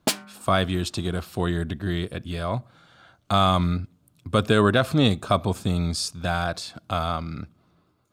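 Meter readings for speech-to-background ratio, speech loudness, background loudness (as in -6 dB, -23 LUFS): 5.0 dB, -24.5 LUFS, -29.5 LUFS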